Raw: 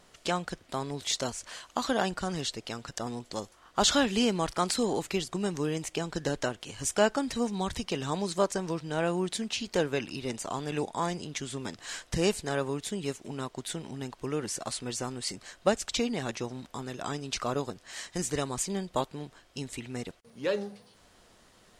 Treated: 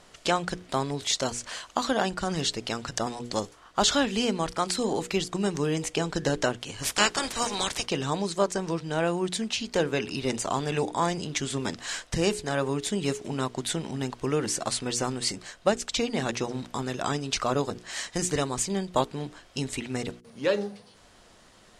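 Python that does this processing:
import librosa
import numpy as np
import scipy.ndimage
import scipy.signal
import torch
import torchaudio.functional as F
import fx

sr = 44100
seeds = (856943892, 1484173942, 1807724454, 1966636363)

y = fx.spec_clip(x, sr, under_db=25, at=(6.82, 7.85), fade=0.02)
y = scipy.signal.sosfilt(scipy.signal.butter(2, 11000.0, 'lowpass', fs=sr, output='sos'), y)
y = fx.hum_notches(y, sr, base_hz=60, count=8)
y = fx.rider(y, sr, range_db=3, speed_s=0.5)
y = y * librosa.db_to_amplitude(4.0)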